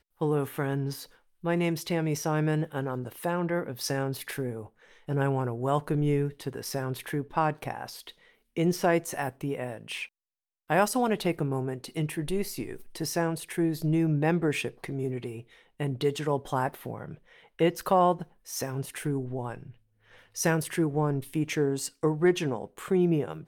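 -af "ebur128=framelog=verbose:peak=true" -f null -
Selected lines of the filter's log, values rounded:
Integrated loudness:
  I:         -29.4 LUFS
  Threshold: -39.9 LUFS
Loudness range:
  LRA:         2.2 LU
  Threshold: -50.1 LUFS
  LRA low:   -31.2 LUFS
  LRA high:  -29.0 LUFS
True peak:
  Peak:      -11.8 dBFS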